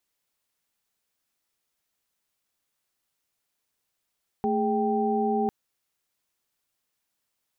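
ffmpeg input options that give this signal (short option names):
-f lavfi -i "aevalsrc='0.0473*(sin(2*PI*220*t)+sin(2*PI*415.3*t)+sin(2*PI*783.99*t))':d=1.05:s=44100"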